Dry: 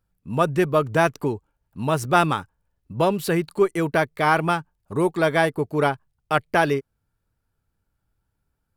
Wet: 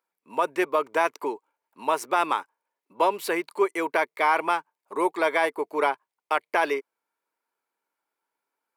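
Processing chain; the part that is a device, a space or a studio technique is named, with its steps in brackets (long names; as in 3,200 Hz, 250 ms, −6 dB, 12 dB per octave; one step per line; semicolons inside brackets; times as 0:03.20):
laptop speaker (high-pass filter 340 Hz 24 dB per octave; parametric band 980 Hz +9.5 dB 0.36 octaves; parametric band 2,200 Hz +8 dB 0.34 octaves; brickwall limiter −8 dBFS, peak gain reduction 7 dB)
level −3 dB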